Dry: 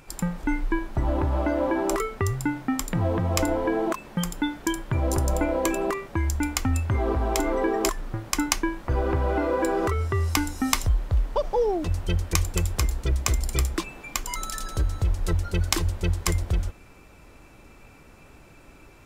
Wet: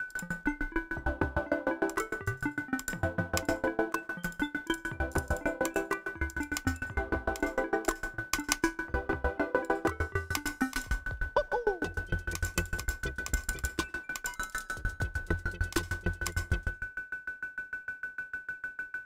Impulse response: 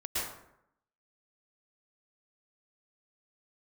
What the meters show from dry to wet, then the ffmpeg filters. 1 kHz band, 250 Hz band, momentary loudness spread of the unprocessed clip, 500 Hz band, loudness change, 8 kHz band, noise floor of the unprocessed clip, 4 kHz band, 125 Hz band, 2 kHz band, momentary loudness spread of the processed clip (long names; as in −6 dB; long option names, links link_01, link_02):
−6.5 dB, −8.0 dB, 5 LU, −7.5 dB, −7.5 dB, −8.5 dB, −51 dBFS, −8.5 dB, −11.5 dB, +3.0 dB, 7 LU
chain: -filter_complex "[0:a]lowshelf=frequency=130:gain=-6.5,aeval=exprs='val(0)+0.0355*sin(2*PI*1500*n/s)':channel_layout=same,asplit=2[link_01][link_02];[1:a]atrim=start_sample=2205[link_03];[link_02][link_03]afir=irnorm=-1:irlink=0,volume=-15.5dB[link_04];[link_01][link_04]amix=inputs=2:normalize=0,aeval=exprs='val(0)*pow(10,-28*if(lt(mod(6.6*n/s,1),2*abs(6.6)/1000),1-mod(6.6*n/s,1)/(2*abs(6.6)/1000),(mod(6.6*n/s,1)-2*abs(6.6)/1000)/(1-2*abs(6.6)/1000))/20)':channel_layout=same"